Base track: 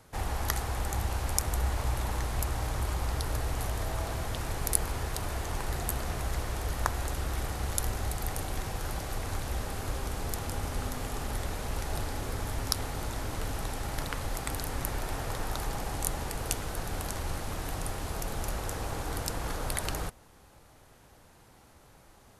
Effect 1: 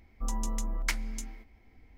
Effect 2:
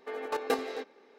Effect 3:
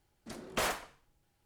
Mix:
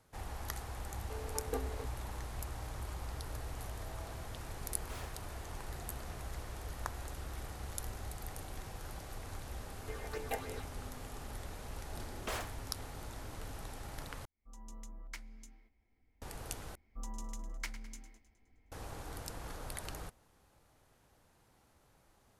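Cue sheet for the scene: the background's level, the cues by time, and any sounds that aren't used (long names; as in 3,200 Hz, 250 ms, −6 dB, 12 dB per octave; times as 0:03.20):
base track −11 dB
0:01.03: mix in 2 −13 dB + tilt shelving filter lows +6 dB
0:04.33: mix in 3 −13.5 dB + hard clipping −34 dBFS
0:09.81: mix in 2 −5 dB + all-pass phaser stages 6, 3.2 Hz, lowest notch 300–1,300 Hz
0:11.70: mix in 3 −8 dB
0:14.25: overwrite with 1 −16.5 dB + fade in at the beginning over 0.51 s
0:16.75: overwrite with 1 −11 dB + feedback echo with a high-pass in the loop 104 ms, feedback 54%, level −13 dB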